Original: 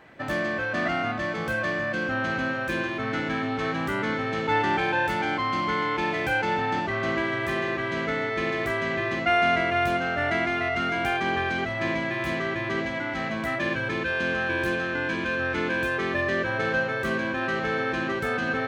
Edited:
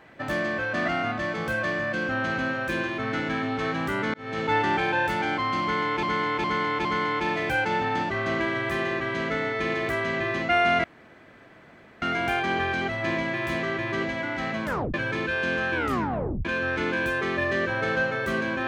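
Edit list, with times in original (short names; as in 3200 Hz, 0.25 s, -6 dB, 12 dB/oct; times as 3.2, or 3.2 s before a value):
4.14–4.41 fade in
5.62–6.03 loop, 4 plays
9.61–10.79 room tone
13.42 tape stop 0.29 s
14.52 tape stop 0.70 s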